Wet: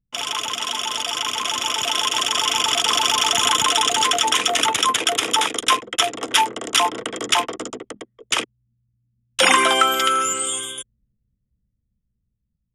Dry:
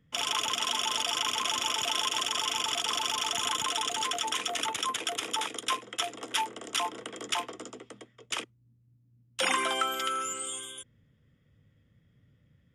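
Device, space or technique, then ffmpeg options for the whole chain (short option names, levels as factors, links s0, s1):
voice memo with heavy noise removal: -af "anlmdn=0.0251,dynaudnorm=f=510:g=9:m=2.66,volume=1.68"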